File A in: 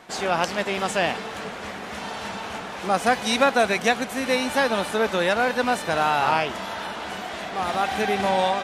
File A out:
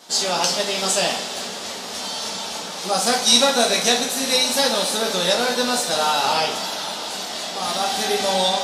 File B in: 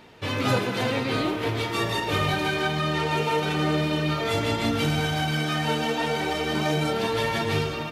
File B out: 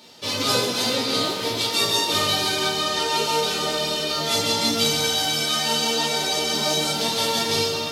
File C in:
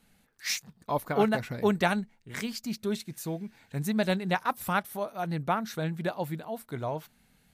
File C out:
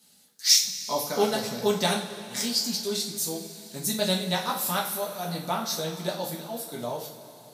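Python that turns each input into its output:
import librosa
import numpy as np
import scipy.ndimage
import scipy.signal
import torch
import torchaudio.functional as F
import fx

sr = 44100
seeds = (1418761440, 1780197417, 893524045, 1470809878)

y = scipy.signal.sosfilt(scipy.signal.butter(2, 160.0, 'highpass', fs=sr, output='sos'), x)
y = fx.high_shelf_res(y, sr, hz=3100.0, db=11.5, q=1.5)
y = fx.rev_double_slope(y, sr, seeds[0], early_s=0.37, late_s=3.7, knee_db=-18, drr_db=-3.0)
y = F.gain(torch.from_numpy(y), -4.0).numpy()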